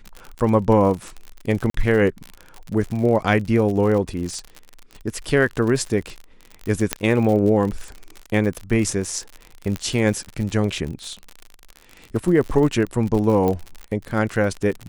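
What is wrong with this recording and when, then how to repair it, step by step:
crackle 55 per s -26 dBFS
1.70–1.74 s: dropout 43 ms
6.93 s: pop -3 dBFS
9.76 s: pop -12 dBFS
13.48 s: pop -11 dBFS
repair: de-click; interpolate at 1.70 s, 43 ms

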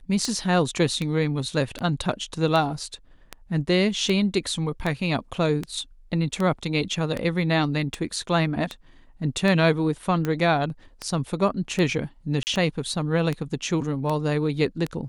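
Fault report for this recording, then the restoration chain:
tick 78 rpm -14 dBFS
12.43–12.47 s: dropout 39 ms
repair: de-click; interpolate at 12.43 s, 39 ms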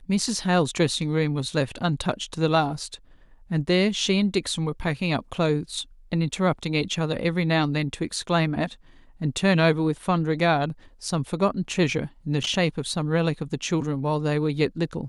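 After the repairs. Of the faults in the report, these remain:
nothing left

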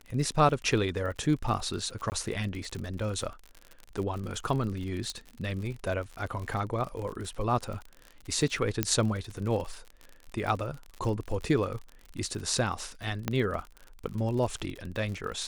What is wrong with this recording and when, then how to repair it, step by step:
crackle 51 per s -35 dBFS
2.10–2.12 s: dropout 19 ms
5.10 s: pop -21 dBFS
8.83 s: pop -9 dBFS
13.28 s: pop -13 dBFS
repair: de-click; interpolate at 2.10 s, 19 ms

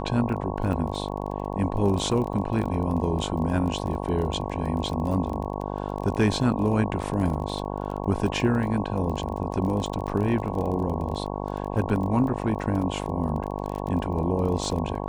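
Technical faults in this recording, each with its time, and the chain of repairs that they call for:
buzz 50 Hz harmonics 22 -31 dBFS
crackle 24 per s -31 dBFS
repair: de-click; de-hum 50 Hz, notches 22

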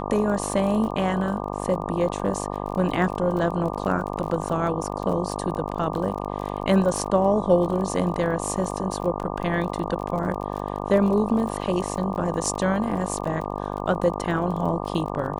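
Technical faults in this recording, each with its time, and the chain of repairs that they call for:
buzz 50 Hz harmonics 24 -30 dBFS
crackle 29 per s -31 dBFS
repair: de-click; de-hum 50 Hz, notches 24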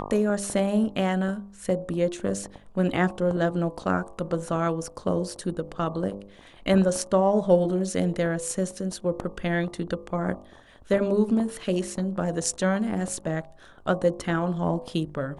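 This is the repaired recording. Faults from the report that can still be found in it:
nothing left

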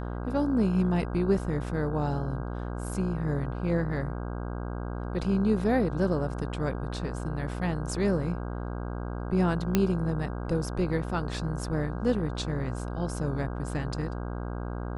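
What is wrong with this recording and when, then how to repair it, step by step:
buzz 60 Hz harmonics 27 -34 dBFS
9.75 s: pop -9 dBFS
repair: de-click; de-hum 60 Hz, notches 27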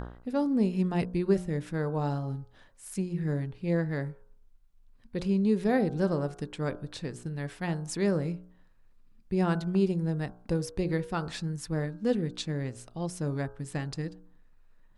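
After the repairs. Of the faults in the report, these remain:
nothing left

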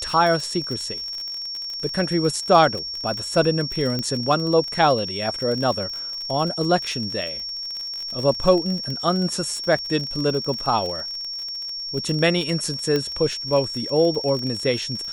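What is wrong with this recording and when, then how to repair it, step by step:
crackle 39 per s -27 dBFS
whine 5.5 kHz -28 dBFS
3.99 s: pop -13 dBFS
12.96 s: pop -10 dBFS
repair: de-click; band-stop 5.5 kHz, Q 30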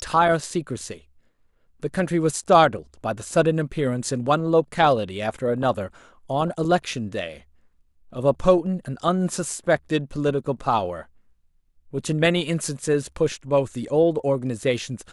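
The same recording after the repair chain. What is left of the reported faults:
nothing left

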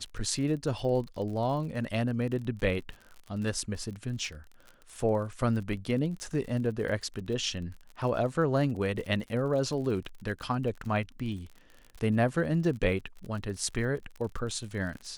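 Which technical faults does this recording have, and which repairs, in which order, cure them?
crackle 44 per s -38 dBFS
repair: de-click

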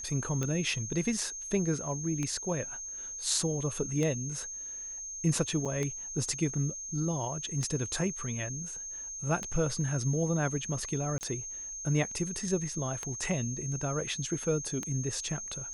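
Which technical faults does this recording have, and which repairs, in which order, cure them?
tick 33 1/3 rpm -19 dBFS
whine 6.4 kHz -38 dBFS
5.65–5.66 s: dropout 6.3 ms
11.18–11.21 s: dropout 29 ms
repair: de-click; band-stop 6.4 kHz, Q 30; interpolate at 5.65 s, 6.3 ms; interpolate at 11.18 s, 29 ms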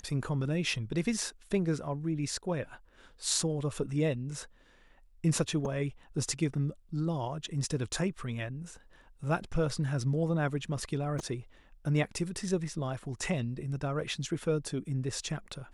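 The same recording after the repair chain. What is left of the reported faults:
nothing left

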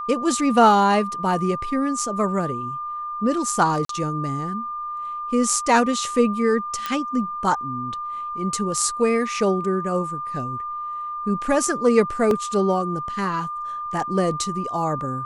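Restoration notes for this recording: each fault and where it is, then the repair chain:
whine 1.2 kHz -27 dBFS
3.85–3.89 s: dropout 43 ms
6.86 s: pop -11 dBFS
12.31 s: dropout 2 ms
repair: de-click; band-stop 1.2 kHz, Q 30; interpolate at 3.85 s, 43 ms; interpolate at 12.31 s, 2 ms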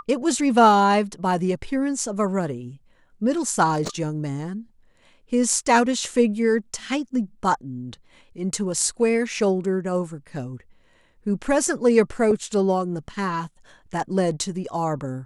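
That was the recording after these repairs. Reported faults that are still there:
nothing left

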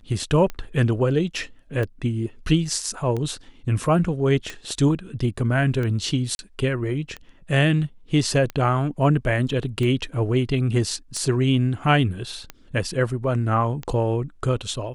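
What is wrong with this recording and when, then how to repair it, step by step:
tick 45 rpm -17 dBFS
6.35–6.39 s: dropout 41 ms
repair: de-click; interpolate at 6.35 s, 41 ms

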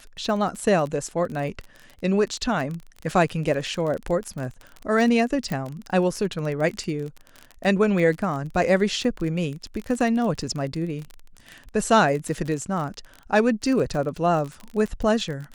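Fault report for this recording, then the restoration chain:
crackle 28 per s -28 dBFS
5.52 s: pop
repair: de-click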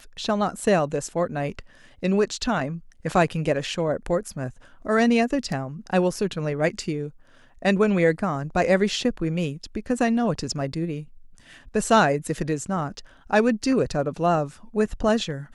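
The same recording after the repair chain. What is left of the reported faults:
5.52 s: pop

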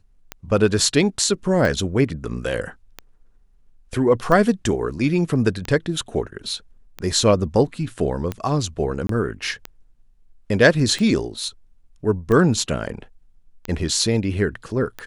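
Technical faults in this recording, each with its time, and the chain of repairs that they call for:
tick 45 rpm -13 dBFS
9.07–9.09 s: dropout 23 ms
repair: de-click; interpolate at 9.07 s, 23 ms

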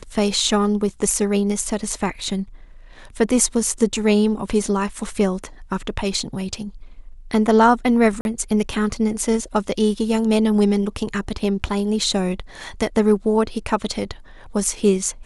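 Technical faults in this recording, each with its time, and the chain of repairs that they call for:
8.21–8.25 s: dropout 41 ms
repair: interpolate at 8.21 s, 41 ms

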